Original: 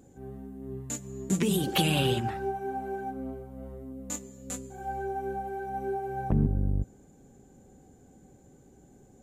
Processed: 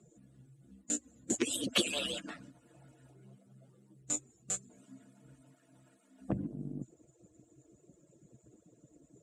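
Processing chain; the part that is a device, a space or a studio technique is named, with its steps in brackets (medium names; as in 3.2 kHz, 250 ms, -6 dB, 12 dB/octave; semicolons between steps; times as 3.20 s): harmonic-percussive separation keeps percussive; car door speaker (cabinet simulation 91–9400 Hz, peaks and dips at 94 Hz -9 dB, 130 Hz +6 dB, 300 Hz +4 dB, 930 Hz -8 dB, 2 kHz -3 dB, 7.9 kHz +7 dB); 5.55–6.20 s: high-pass 220 Hz -> 610 Hz 6 dB/octave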